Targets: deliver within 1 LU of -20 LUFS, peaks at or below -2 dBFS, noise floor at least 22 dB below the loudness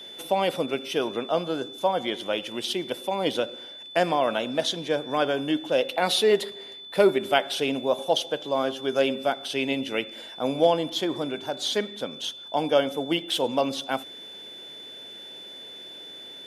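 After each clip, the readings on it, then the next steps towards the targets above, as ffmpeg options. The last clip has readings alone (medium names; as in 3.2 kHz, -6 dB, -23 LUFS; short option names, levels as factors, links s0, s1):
steady tone 3.5 kHz; tone level -40 dBFS; loudness -26.0 LUFS; peak level -5.0 dBFS; loudness target -20.0 LUFS
-> -af "bandreject=f=3500:w=30"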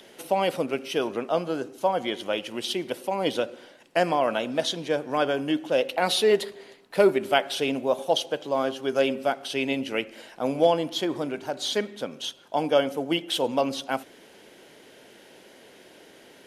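steady tone not found; loudness -26.5 LUFS; peak level -5.0 dBFS; loudness target -20.0 LUFS
-> -af "volume=2.11,alimiter=limit=0.794:level=0:latency=1"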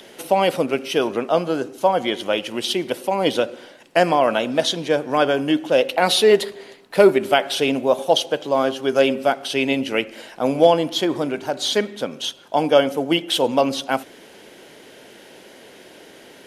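loudness -20.0 LUFS; peak level -2.0 dBFS; noise floor -46 dBFS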